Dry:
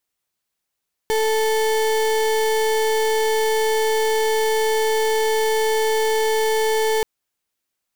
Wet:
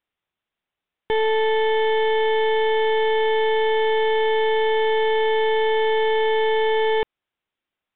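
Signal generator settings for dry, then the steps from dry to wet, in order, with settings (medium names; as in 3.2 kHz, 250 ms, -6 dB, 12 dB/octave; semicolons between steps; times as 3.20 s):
pulse 439 Hz, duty 34% -19 dBFS 5.93 s
resampled via 8 kHz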